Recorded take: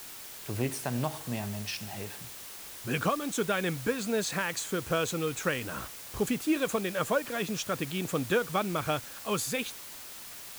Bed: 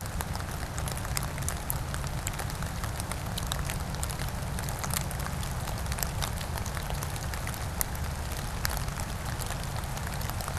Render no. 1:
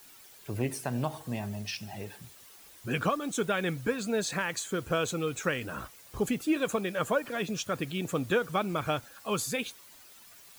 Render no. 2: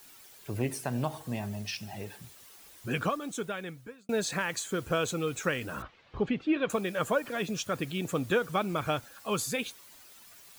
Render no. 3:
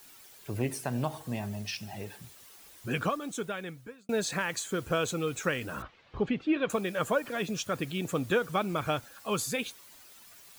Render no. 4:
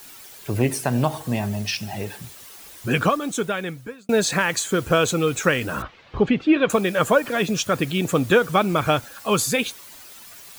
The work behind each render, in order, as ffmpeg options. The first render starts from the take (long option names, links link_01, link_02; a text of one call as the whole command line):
ffmpeg -i in.wav -af "afftdn=noise_reduction=11:noise_floor=-45" out.wav
ffmpeg -i in.wav -filter_complex "[0:a]asettb=1/sr,asplit=3[link_01][link_02][link_03];[link_01]atrim=end=5.824[link_04];[link_02]atrim=start=5.82:end=6.7,asetpts=PTS-STARTPTS,afade=type=in:duration=0.004:curve=qsin,afade=type=out:start_time=0.876:duration=0.004:curve=qsin,lowpass=frequency=3600:width=0.5412,lowpass=frequency=3600:width=1.3066[link_05];[link_03]atrim=start=6.696[link_06];[link_04][link_05]acrossfade=duration=0.004:curve1=hsin:curve2=qsin[link_07];[link_07][link_06]acrossfade=duration=0.004:curve1=qsin:curve2=hsin,asplit=2[link_08][link_09];[link_08]atrim=end=4.09,asetpts=PTS-STARTPTS,afade=type=out:start_time=2.86:duration=1.23[link_10];[link_09]atrim=start=4.09,asetpts=PTS-STARTPTS,afade=type=in:duration=0.004:curve=hsin[link_11];[link_10][link_11]concat=n=2:v=0:a=1" out.wav
ffmpeg -i in.wav -af anull out.wav
ffmpeg -i in.wav -af "volume=10.5dB" out.wav